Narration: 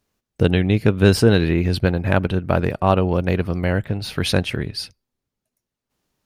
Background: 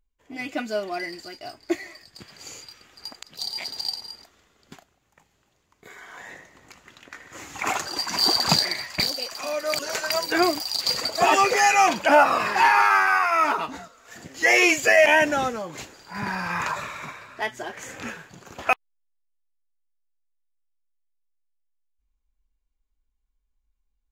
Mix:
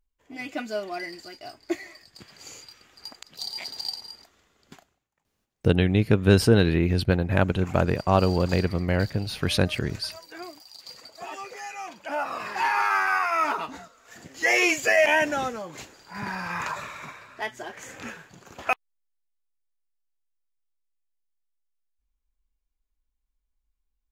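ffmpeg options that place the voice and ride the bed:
ffmpeg -i stem1.wav -i stem2.wav -filter_complex "[0:a]adelay=5250,volume=-3.5dB[link_01];[1:a]volume=13dB,afade=type=out:start_time=4.85:duration=0.23:silence=0.149624,afade=type=in:start_time=11.96:duration=1.18:silence=0.158489[link_02];[link_01][link_02]amix=inputs=2:normalize=0" out.wav

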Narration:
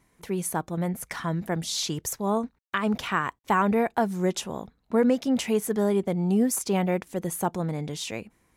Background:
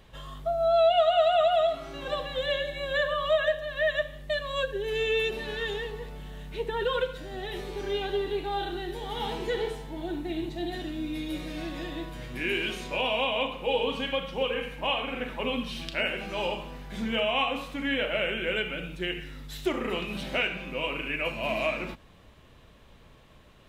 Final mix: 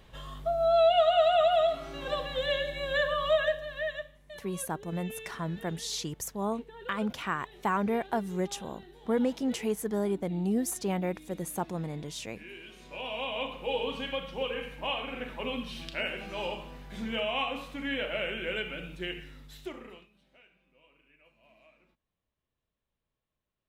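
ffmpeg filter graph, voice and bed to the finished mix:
ffmpeg -i stem1.wav -i stem2.wav -filter_complex "[0:a]adelay=4150,volume=-6dB[link_01];[1:a]volume=12dB,afade=type=out:start_time=3.35:duration=0.83:silence=0.149624,afade=type=in:start_time=12.71:duration=0.82:silence=0.223872,afade=type=out:start_time=19.06:duration=1.04:silence=0.0375837[link_02];[link_01][link_02]amix=inputs=2:normalize=0" out.wav

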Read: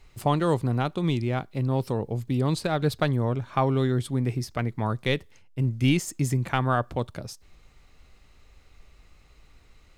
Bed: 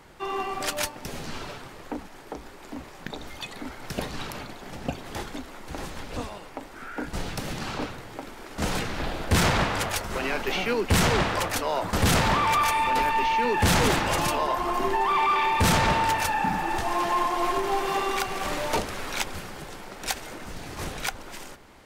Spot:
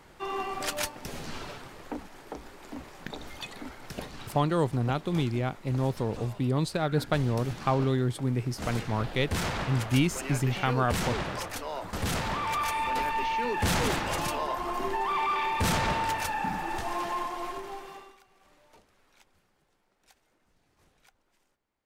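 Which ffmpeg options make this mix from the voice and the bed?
ffmpeg -i stem1.wav -i stem2.wav -filter_complex "[0:a]adelay=4100,volume=-2.5dB[link_01];[1:a]volume=0.5dB,afade=type=out:start_time=3.43:duration=0.73:silence=0.501187,afade=type=in:start_time=12.3:duration=0.55:silence=0.668344,afade=type=out:start_time=16.89:duration=1.28:silence=0.0446684[link_02];[link_01][link_02]amix=inputs=2:normalize=0" out.wav

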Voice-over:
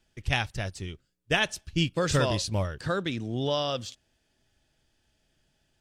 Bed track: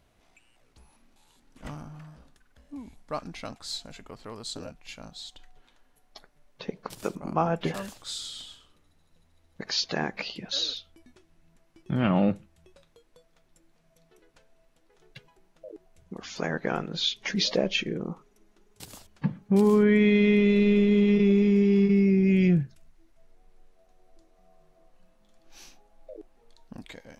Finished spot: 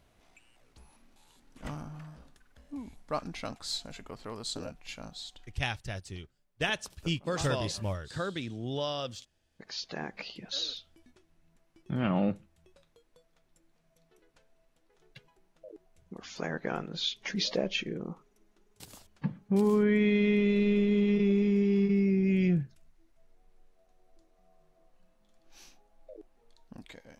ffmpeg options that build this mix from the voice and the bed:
ffmpeg -i stem1.wav -i stem2.wav -filter_complex "[0:a]adelay=5300,volume=-5.5dB[link_01];[1:a]volume=11.5dB,afade=type=out:start_time=5.09:duration=0.79:silence=0.149624,afade=type=in:start_time=9.36:duration=1.23:silence=0.266073[link_02];[link_01][link_02]amix=inputs=2:normalize=0" out.wav

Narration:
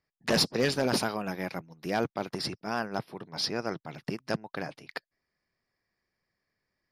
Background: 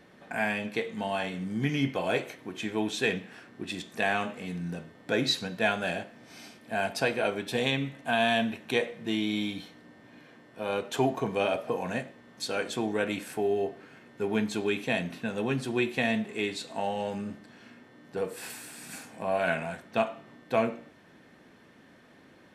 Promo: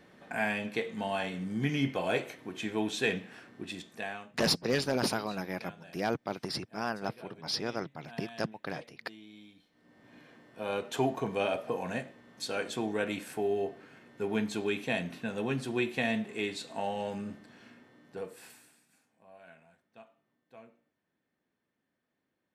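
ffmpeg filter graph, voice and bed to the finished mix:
ffmpeg -i stem1.wav -i stem2.wav -filter_complex "[0:a]adelay=4100,volume=-2.5dB[link_01];[1:a]volume=17.5dB,afade=type=out:start_time=3.46:duration=0.86:silence=0.0944061,afade=type=in:start_time=9.7:duration=0.46:silence=0.105925,afade=type=out:start_time=17.63:duration=1.23:silence=0.0630957[link_02];[link_01][link_02]amix=inputs=2:normalize=0" out.wav

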